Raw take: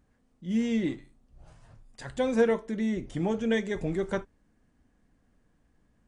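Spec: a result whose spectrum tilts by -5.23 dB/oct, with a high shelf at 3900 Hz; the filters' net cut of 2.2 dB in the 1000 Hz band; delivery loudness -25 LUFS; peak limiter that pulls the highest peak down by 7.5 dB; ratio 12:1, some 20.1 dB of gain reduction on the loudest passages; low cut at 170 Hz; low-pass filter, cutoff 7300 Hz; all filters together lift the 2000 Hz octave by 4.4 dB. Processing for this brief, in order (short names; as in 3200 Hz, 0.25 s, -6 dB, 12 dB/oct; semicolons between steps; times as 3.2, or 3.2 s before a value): HPF 170 Hz; LPF 7300 Hz; bell 1000 Hz -4.5 dB; bell 2000 Hz +8 dB; high shelf 3900 Hz -7 dB; compressor 12:1, threshold -39 dBFS; gain +21 dB; limiter -15 dBFS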